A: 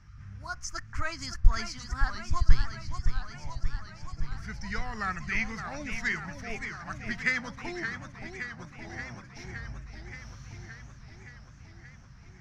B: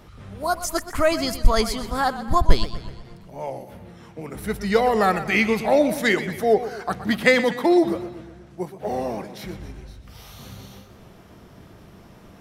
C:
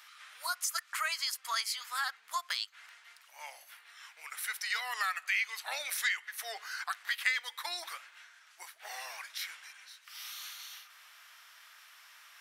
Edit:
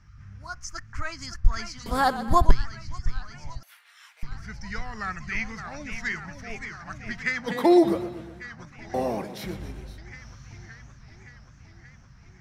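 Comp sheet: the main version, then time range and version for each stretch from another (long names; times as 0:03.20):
A
0:01.86–0:02.51: punch in from B
0:03.63–0:04.23: punch in from C
0:07.49–0:08.42: punch in from B, crossfade 0.06 s
0:08.94–0:09.98: punch in from B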